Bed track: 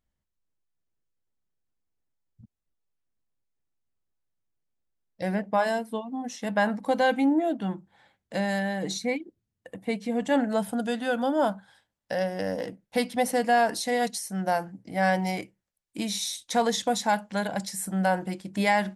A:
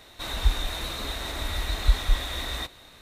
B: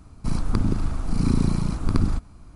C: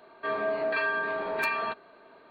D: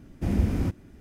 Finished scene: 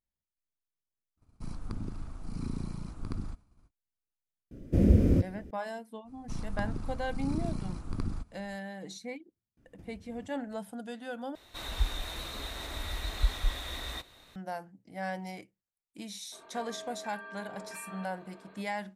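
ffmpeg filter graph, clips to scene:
-filter_complex "[2:a]asplit=2[a][b];[4:a]asplit=2[c][d];[0:a]volume=-12.5dB[e];[a]agate=range=-33dB:threshold=-42dB:ratio=3:release=100:detection=peak[f];[c]lowshelf=f=670:t=q:w=3:g=7[g];[d]acompressor=threshold=-37dB:ratio=5:attack=72:release=289:knee=1:detection=rms[h];[3:a]acompressor=threshold=-42dB:ratio=6:attack=3.2:release=140:knee=1:detection=peak[i];[e]asplit=2[j][k];[j]atrim=end=11.354[l];[1:a]atrim=end=3.01,asetpts=PTS-STARTPTS,volume=-7dB[m];[k]atrim=start=14.356[n];[f]atrim=end=2.55,asetpts=PTS-STARTPTS,volume=-15.5dB,afade=t=in:d=0.05,afade=t=out:st=2.5:d=0.05,adelay=1160[o];[g]atrim=end=1,asetpts=PTS-STARTPTS,volume=-5dB,afade=t=in:d=0.004:c=hsin,afade=t=out:st=0.996:d=0.004:c=hsin,adelay=4510[p];[b]atrim=end=2.55,asetpts=PTS-STARTPTS,volume=-13dB,afade=t=in:d=0.05,afade=t=out:st=2.5:d=0.05,adelay=6040[q];[h]atrim=end=1,asetpts=PTS-STARTPTS,volume=-17dB,afade=t=in:d=0.004:c=hsin,afade=t=out:st=0.996:d=0.004:c=hsin,adelay=9570[r];[i]atrim=end=2.3,asetpts=PTS-STARTPTS,volume=-1.5dB,afade=t=in:d=0.004:c=hsin,afade=t=out:st=2.296:d=0.004:c=hsin,adelay=16320[s];[l][m]acrossfade=d=0.004:c1=hsin:c2=hsin[t];[t][n]acrossfade=d=0.004:c1=hsin:c2=hsin[u];[u][o][p][q][r][s]amix=inputs=6:normalize=0"

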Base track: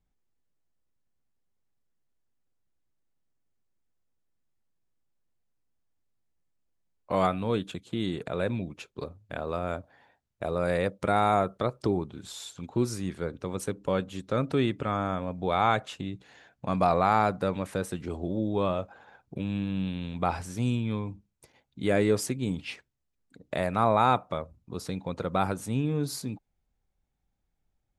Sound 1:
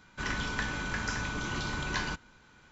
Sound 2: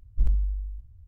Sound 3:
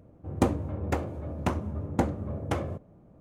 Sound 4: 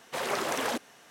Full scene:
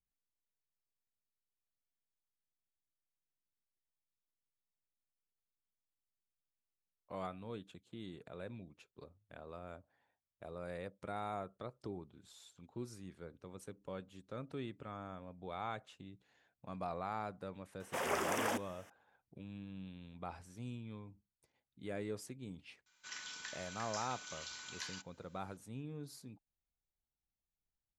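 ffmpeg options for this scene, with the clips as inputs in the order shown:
-filter_complex "[0:a]volume=-18dB[a];[4:a]equalizer=f=4.1k:t=o:w=0.33:g=-14.5[b];[1:a]aderivative[c];[b]atrim=end=1.1,asetpts=PTS-STARTPTS,volume=-5dB,afade=t=in:d=0.004:c=hsin,afade=t=out:st=1.096:d=0.004:c=hsin,adelay=784980S[d];[c]atrim=end=2.71,asetpts=PTS-STARTPTS,volume=-2.5dB,afade=t=in:d=0.004:c=hsin,afade=t=out:st=2.706:d=0.004:c=hsin,adelay=22860[e];[a][d][e]amix=inputs=3:normalize=0"

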